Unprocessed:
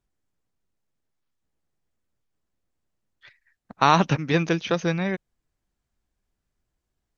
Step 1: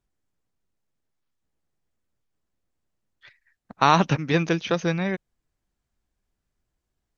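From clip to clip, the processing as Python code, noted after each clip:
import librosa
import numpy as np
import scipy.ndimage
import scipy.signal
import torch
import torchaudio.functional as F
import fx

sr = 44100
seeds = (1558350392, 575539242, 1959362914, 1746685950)

y = x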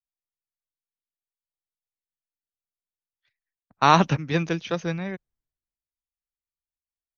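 y = fx.band_widen(x, sr, depth_pct=70)
y = F.gain(torch.from_numpy(y), -3.5).numpy()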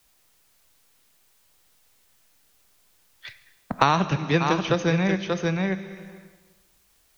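y = x + 10.0 ** (-12.0 / 20.0) * np.pad(x, (int(584 * sr / 1000.0), 0))[:len(x)]
y = fx.rev_plate(y, sr, seeds[0], rt60_s=1.1, hf_ratio=1.0, predelay_ms=0, drr_db=12.0)
y = fx.band_squash(y, sr, depth_pct=100)
y = F.gain(torch.from_numpy(y), 2.0).numpy()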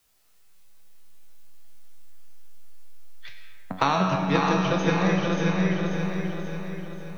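y = fx.comb_fb(x, sr, f0_hz=93.0, decay_s=0.54, harmonics='all', damping=0.0, mix_pct=80)
y = fx.echo_feedback(y, sr, ms=535, feedback_pct=50, wet_db=-6)
y = fx.rev_freeverb(y, sr, rt60_s=3.1, hf_ratio=0.3, predelay_ms=70, drr_db=4.5)
y = F.gain(torch.from_numpy(y), 6.0).numpy()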